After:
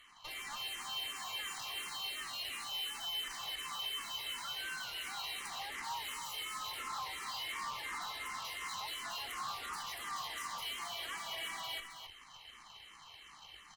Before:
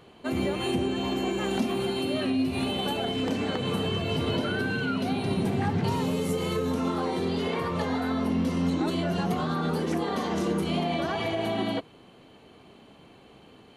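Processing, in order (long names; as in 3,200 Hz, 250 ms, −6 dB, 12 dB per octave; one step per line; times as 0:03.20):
high-pass filter 1,100 Hz 24 dB per octave
comb filter 1 ms, depth 56%
in parallel at +0.5 dB: downward compressor, threshold −45 dBFS, peak gain reduction 15 dB
on the sum: brickwall limiter −28.5 dBFS, peak gain reduction 10 dB
automatic gain control gain up to 3.5 dB
soft clipping −27.5 dBFS, distortion −20 dB
harmonic generator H 6 −11 dB, 8 −23 dB, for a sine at −28.5 dBFS
on a send: single-tap delay 267 ms −7.5 dB
on the sum: frequency shifter mixed with the dry sound −2.8 Hz
level −5 dB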